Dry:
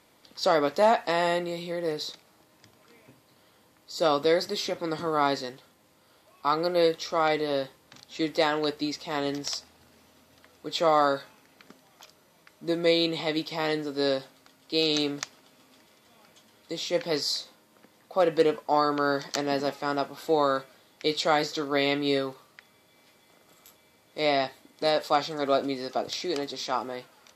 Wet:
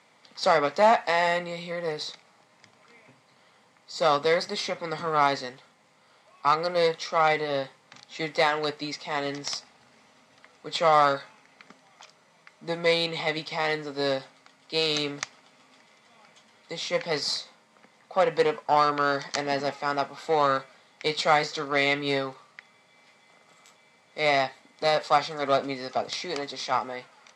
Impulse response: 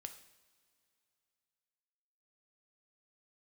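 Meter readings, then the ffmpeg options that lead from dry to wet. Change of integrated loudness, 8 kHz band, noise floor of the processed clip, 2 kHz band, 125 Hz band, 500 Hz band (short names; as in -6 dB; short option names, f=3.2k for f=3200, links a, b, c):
+1.0 dB, 0.0 dB, -61 dBFS, +4.5 dB, +1.0 dB, -0.5 dB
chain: -af "aeval=exprs='0.282*(cos(1*acos(clip(val(0)/0.282,-1,1)))-cos(1*PI/2))+0.0178*(cos(6*acos(clip(val(0)/0.282,-1,1)))-cos(6*PI/2))':c=same,highpass=f=120:w=0.5412,highpass=f=120:w=1.3066,equalizer=f=330:t=q:w=4:g=-10,equalizer=f=810:t=q:w=4:g=4,equalizer=f=1.2k:t=q:w=4:g=4,equalizer=f=2.1k:t=q:w=4:g=7,lowpass=f=8.5k:w=0.5412,lowpass=f=8.5k:w=1.3066"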